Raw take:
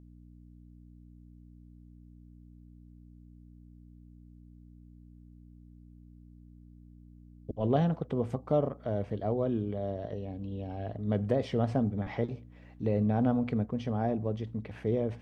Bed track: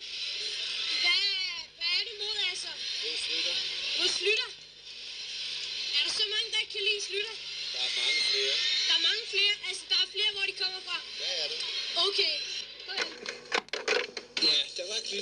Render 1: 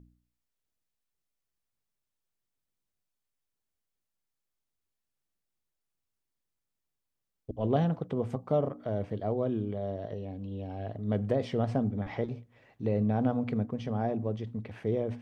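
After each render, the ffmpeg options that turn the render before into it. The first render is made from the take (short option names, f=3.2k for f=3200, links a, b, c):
-af "bandreject=f=60:t=h:w=4,bandreject=f=120:t=h:w=4,bandreject=f=180:t=h:w=4,bandreject=f=240:t=h:w=4,bandreject=f=300:t=h:w=4"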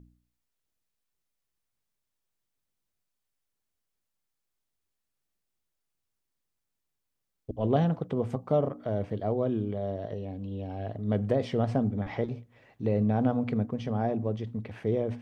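-af "volume=2dB"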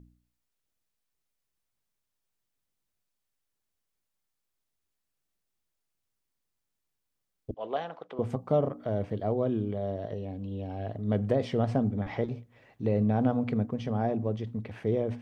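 -filter_complex "[0:a]asettb=1/sr,asplit=3[a][b][c];[a]atrim=end=7.544[d];[b]atrim=start=7.54:end=8.19,asetpts=PTS-STARTPTS,afade=t=in:d=0.004:c=qsin,afade=t=out:st=0.646:d=0.004:c=qsin,highpass=680,lowpass=4.5k[e];[c]atrim=start=8.186[f];[d][e]acrossfade=d=0.004:c1=hsin:c2=qsin[g];[g][f]acrossfade=d=0.004:c1=qsin:c2=hsin"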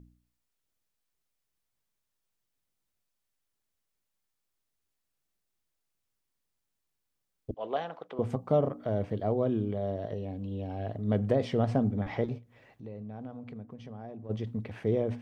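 -filter_complex "[0:a]asplit=3[a][b][c];[a]afade=t=out:st=12.37:d=0.02[d];[b]acompressor=threshold=-52dB:ratio=2:attack=3.2:release=140:knee=1:detection=peak,afade=t=in:st=12.37:d=0.02,afade=t=out:st=14.29:d=0.02[e];[c]afade=t=in:st=14.29:d=0.02[f];[d][e][f]amix=inputs=3:normalize=0"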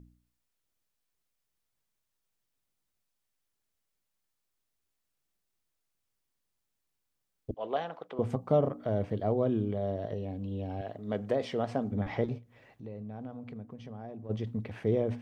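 -filter_complex "[0:a]asettb=1/sr,asplit=3[a][b][c];[a]atrim=end=10.814[d];[b]atrim=start=10.81:end=11.92,asetpts=PTS-STARTPTS,afade=t=in:d=0.004:c=qsin,afade=t=out:st=1.106:d=0.004:c=qsin,highpass=f=420:p=1[e];[c]atrim=start=11.916[f];[d][e]acrossfade=d=0.004:c1=hsin:c2=qsin[g];[g][f]acrossfade=d=0.004:c1=qsin:c2=hsin"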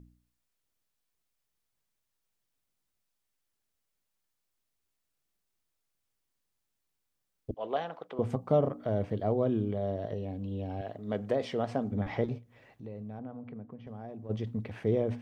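-filter_complex "[0:a]asettb=1/sr,asplit=3[a][b][c];[a]atrim=end=13.194[d];[b]atrim=start=13.19:end=13.87,asetpts=PTS-STARTPTS,afade=t=in:d=0.004:c=qsin,afade=t=out:st=0.676:d=0.004:c=qsin,highpass=100,lowpass=2.1k[e];[c]atrim=start=13.866[f];[d][e]acrossfade=d=0.004:c1=hsin:c2=qsin[g];[g][f]acrossfade=d=0.004:c1=qsin:c2=hsin"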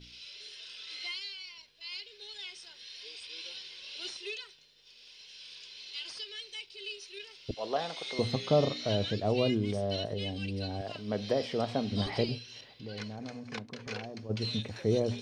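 -filter_complex "[1:a]volume=-13dB[a];[0:a][a]amix=inputs=2:normalize=0"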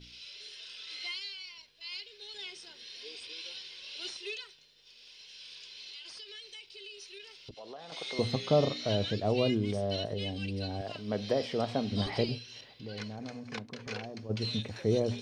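-filter_complex "[0:a]asettb=1/sr,asplit=3[a][b][c];[a]atrim=end=2.344[d];[b]atrim=start=2.34:end=3.33,asetpts=PTS-STARTPTS,afade=t=in:d=0.004:c=qsin,afade=t=out:st=0.986:d=0.004:c=qsin,equalizer=f=290:w=0.71:g=9[e];[c]atrim=start=3.326[f];[d][e]acrossfade=d=0.004:c1=hsin:c2=qsin[g];[g][f]acrossfade=d=0.004:c1=qsin:c2=hsin,asettb=1/sr,asplit=3[h][i][j];[h]atrim=end=5.914[k];[i]atrim=start=5.91:end=7.92,asetpts=PTS-STARTPTS,afade=t=in:d=0.004:c=qsin,afade=t=out:st=2.006:d=0.004:c=qsin,acompressor=threshold=-43dB:ratio=6:attack=3.2:release=140:knee=1:detection=peak[l];[j]atrim=start=7.916[m];[k][l]acrossfade=d=0.004:c1=hsin:c2=qsin[n];[n][m]acrossfade=d=0.004:c1=qsin:c2=hsin"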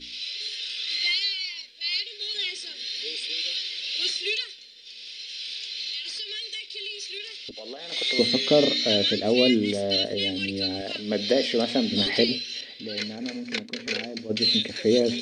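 -af "equalizer=f=125:t=o:w=1:g=-10,equalizer=f=250:t=o:w=1:g=11,equalizer=f=500:t=o:w=1:g=7,equalizer=f=1k:t=o:w=1:g=-7,equalizer=f=2k:t=o:w=1:g=11,equalizer=f=4k:t=o:w=1:g=12,equalizer=f=8k:t=o:w=1:g=9"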